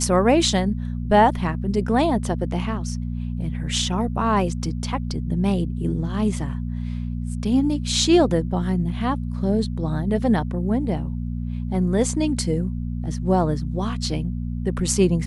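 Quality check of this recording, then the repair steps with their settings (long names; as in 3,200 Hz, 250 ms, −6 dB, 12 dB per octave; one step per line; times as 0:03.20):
mains hum 60 Hz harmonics 4 −27 dBFS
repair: hum removal 60 Hz, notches 4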